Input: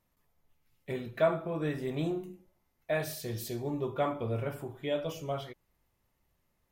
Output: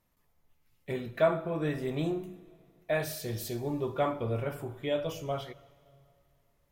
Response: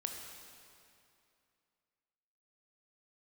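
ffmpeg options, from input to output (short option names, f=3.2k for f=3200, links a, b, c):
-filter_complex "[0:a]asplit=2[a][b];[b]asubboost=boost=5:cutoff=110[c];[1:a]atrim=start_sample=2205[d];[c][d]afir=irnorm=-1:irlink=0,volume=-12.5dB[e];[a][e]amix=inputs=2:normalize=0"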